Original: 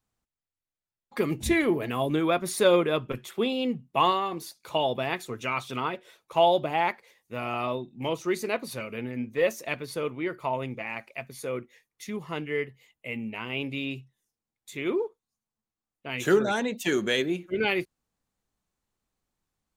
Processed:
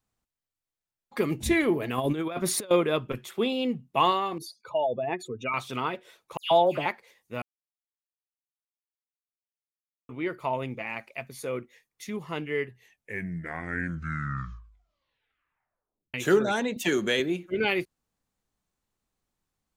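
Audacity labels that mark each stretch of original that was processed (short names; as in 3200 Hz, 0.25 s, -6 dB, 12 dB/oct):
1.980000	2.710000	negative-ratio compressor -28 dBFS, ratio -0.5
4.380000	5.540000	spectral contrast raised exponent 2.2
6.370000	6.860000	dispersion lows, late by 0.14 s, half as late at 2600 Hz
7.420000	10.090000	mute
12.540000	12.540000	tape stop 3.60 s
16.760000	17.200000	three-band squash depth 40%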